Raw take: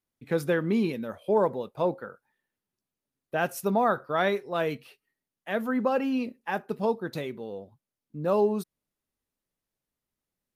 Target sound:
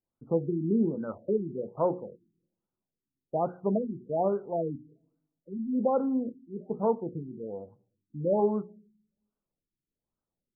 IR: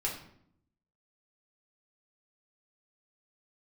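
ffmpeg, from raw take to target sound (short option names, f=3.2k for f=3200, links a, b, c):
-filter_complex "[0:a]bandreject=f=60:t=h:w=6,bandreject=f=120:t=h:w=6,bandreject=f=180:t=h:w=6,bandreject=f=240:t=h:w=6,bandreject=f=300:t=h:w=6,bandreject=f=360:t=h:w=6,bandreject=f=420:t=h:w=6,bandreject=f=480:t=h:w=6,asplit=2[a][b];[1:a]atrim=start_sample=2205,adelay=6[c];[b][c]afir=irnorm=-1:irlink=0,volume=-23dB[d];[a][d]amix=inputs=2:normalize=0,afftfilt=real='re*lt(b*sr/1024,370*pow(1600/370,0.5+0.5*sin(2*PI*1.2*pts/sr)))':imag='im*lt(b*sr/1024,370*pow(1600/370,0.5+0.5*sin(2*PI*1.2*pts/sr)))':win_size=1024:overlap=0.75"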